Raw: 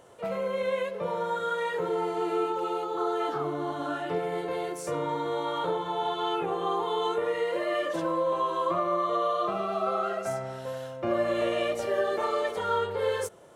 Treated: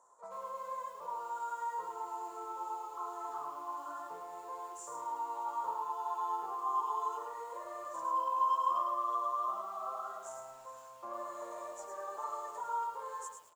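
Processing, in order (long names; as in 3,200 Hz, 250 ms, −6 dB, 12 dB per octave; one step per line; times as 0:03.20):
pair of resonant band-passes 2,700 Hz, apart 2.8 octaves
far-end echo of a speakerphone 90 ms, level −13 dB
feedback echo at a low word length 106 ms, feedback 35%, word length 10 bits, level −5 dB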